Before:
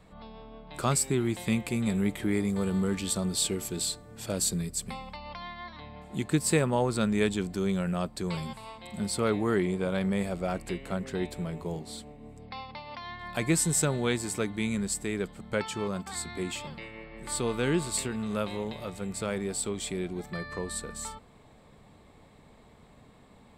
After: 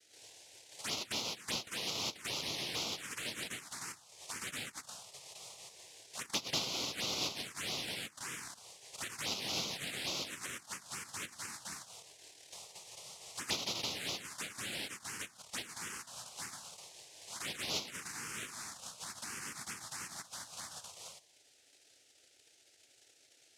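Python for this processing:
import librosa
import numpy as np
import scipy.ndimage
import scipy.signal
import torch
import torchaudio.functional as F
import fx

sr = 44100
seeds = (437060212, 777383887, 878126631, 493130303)

y = fx.noise_vocoder(x, sr, seeds[0], bands=1)
y = fx.env_phaser(y, sr, low_hz=170.0, high_hz=1700.0, full_db=-23.5)
y = y * librosa.db_to_amplitude(-8.0)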